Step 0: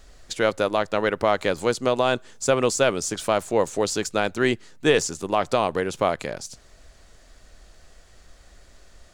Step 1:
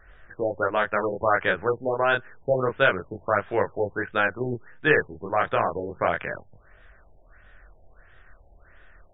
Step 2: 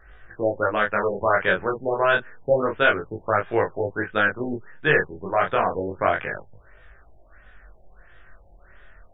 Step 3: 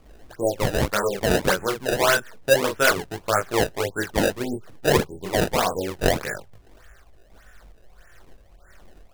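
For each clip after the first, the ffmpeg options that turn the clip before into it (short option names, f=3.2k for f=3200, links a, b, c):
-af "flanger=delay=20:depth=7.1:speed=0.29,equalizer=f=100:t=o:w=0.67:g=3,equalizer=f=250:t=o:w=0.67:g=-5,equalizer=f=1.6k:t=o:w=0.67:g=12,afftfilt=real='re*lt(b*sr/1024,880*pow(3800/880,0.5+0.5*sin(2*PI*1.5*pts/sr)))':imag='im*lt(b*sr/1024,880*pow(3800/880,0.5+0.5*sin(2*PI*1.5*pts/sr)))':win_size=1024:overlap=0.75"
-af "flanger=delay=17.5:depth=4.4:speed=0.28,volume=5dB"
-af "acrusher=samples=23:mix=1:aa=0.000001:lfo=1:lforange=36.8:lforate=1.7"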